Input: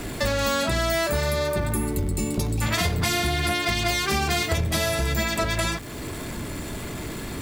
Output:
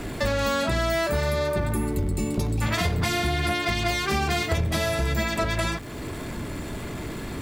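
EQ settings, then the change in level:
high-shelf EQ 4,100 Hz −7 dB
0.0 dB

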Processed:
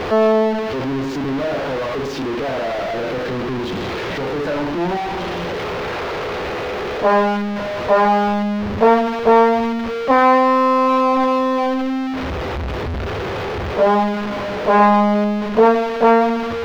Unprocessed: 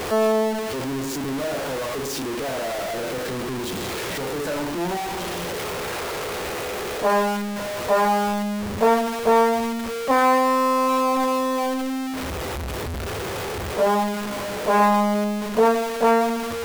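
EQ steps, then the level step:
high-frequency loss of the air 260 metres
high-shelf EQ 5,900 Hz +7.5 dB
+6.0 dB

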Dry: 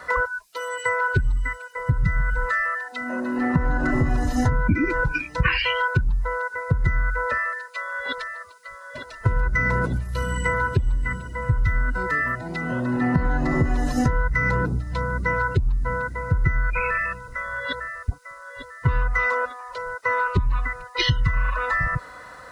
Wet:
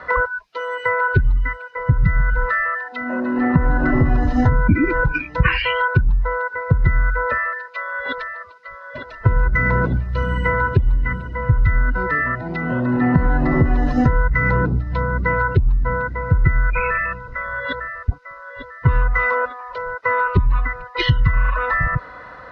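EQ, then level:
high-frequency loss of the air 280 metres
+5.5 dB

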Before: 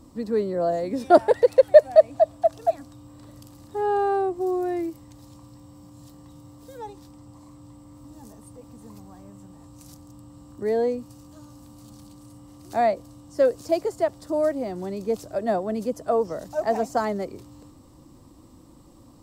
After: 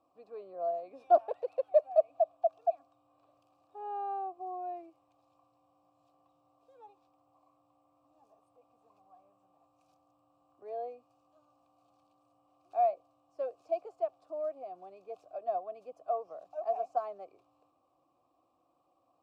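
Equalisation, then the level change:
formant filter a
parametric band 220 Hz −13 dB 0.28 octaves
−4.5 dB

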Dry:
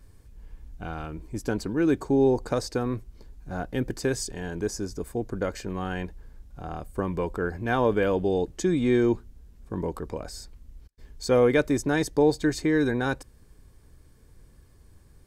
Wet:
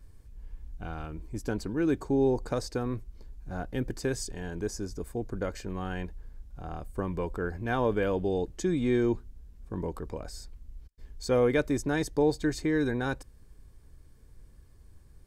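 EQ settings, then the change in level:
low-shelf EQ 69 Hz +7.5 dB
−4.5 dB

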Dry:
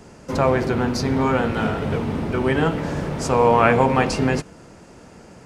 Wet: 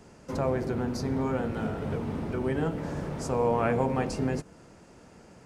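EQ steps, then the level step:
dynamic equaliser 1,100 Hz, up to −4 dB, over −30 dBFS, Q 1.3
dynamic equaliser 3,000 Hz, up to −8 dB, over −40 dBFS, Q 0.75
−8.0 dB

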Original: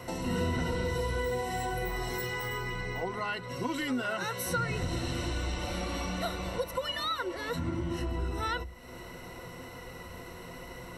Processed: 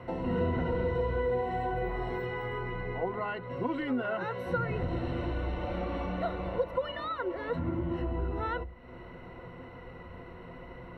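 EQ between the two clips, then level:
high-frequency loss of the air 500 metres
dynamic equaliser 560 Hz, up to +5 dB, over −46 dBFS, Q 0.92
0.0 dB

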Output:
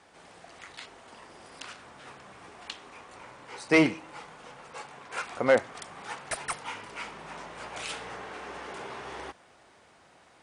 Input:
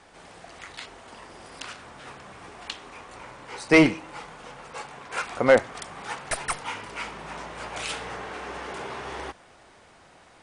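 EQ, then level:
high-pass filter 93 Hz 6 dB per octave
−4.5 dB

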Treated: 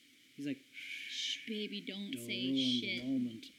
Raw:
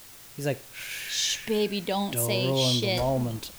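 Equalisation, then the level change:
formant filter i
high-shelf EQ 4,400 Hz +9.5 dB
0.0 dB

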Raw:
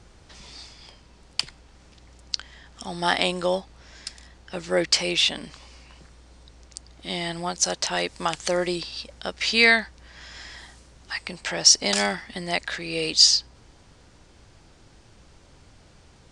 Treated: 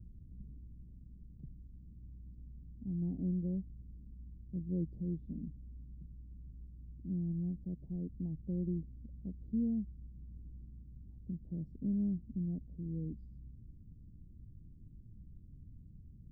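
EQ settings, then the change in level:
inverse Chebyshev band-stop filter 1,200–10,000 Hz, stop band 80 dB
+1.0 dB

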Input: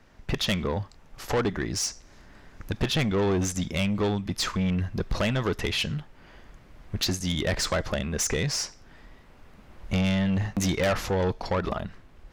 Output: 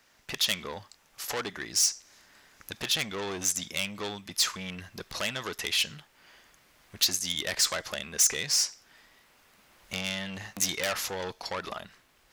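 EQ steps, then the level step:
spectral tilt +4 dB per octave
−5.5 dB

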